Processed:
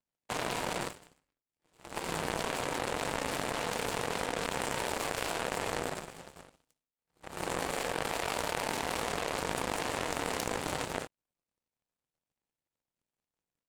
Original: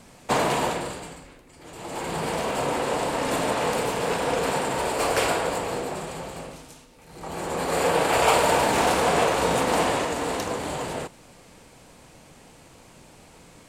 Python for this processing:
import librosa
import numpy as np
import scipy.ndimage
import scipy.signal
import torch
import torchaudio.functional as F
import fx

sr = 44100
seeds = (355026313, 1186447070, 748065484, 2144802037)

y = fx.power_curve(x, sr, exponent=3.0)
y = fx.env_flatten(y, sr, amount_pct=100)
y = y * 10.0 ** (-7.5 / 20.0)